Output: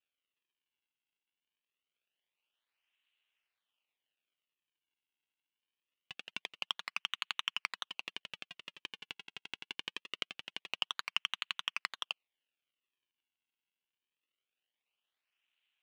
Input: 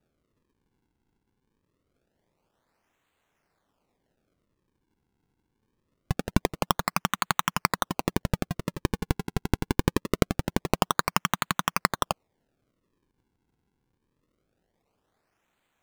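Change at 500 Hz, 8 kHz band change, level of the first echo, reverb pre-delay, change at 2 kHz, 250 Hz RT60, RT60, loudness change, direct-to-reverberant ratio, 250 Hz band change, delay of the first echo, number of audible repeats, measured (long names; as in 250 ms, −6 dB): −27.0 dB, −19.0 dB, no echo audible, no reverb audible, −8.0 dB, no reverb audible, no reverb audible, −11.0 dB, no reverb audible, −33.5 dB, no echo audible, no echo audible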